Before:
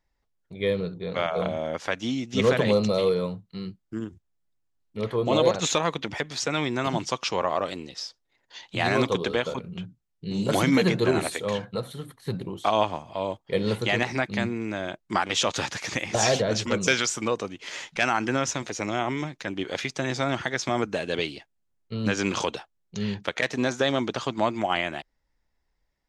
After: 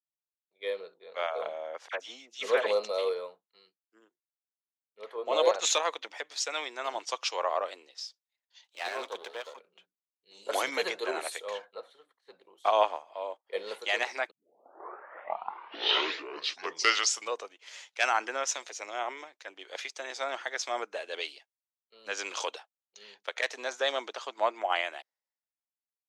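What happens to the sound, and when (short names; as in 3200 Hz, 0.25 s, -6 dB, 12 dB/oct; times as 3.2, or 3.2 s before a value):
1.88–2.67 dispersion lows, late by 56 ms, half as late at 1900 Hz
8.64–9.59 half-wave gain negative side -12 dB
11.75–12.44 air absorption 89 m
14.31 tape start 2.99 s
whole clip: HPF 480 Hz 24 dB/oct; three-band expander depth 70%; gain -5 dB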